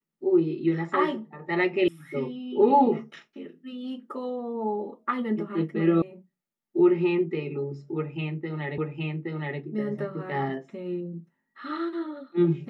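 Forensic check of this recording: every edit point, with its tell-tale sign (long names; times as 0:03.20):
0:01.88: cut off before it has died away
0:06.02: cut off before it has died away
0:08.78: the same again, the last 0.82 s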